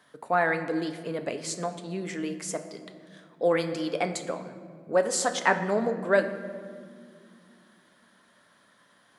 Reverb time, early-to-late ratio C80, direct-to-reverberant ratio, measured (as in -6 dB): 2.2 s, 11.5 dB, 6.5 dB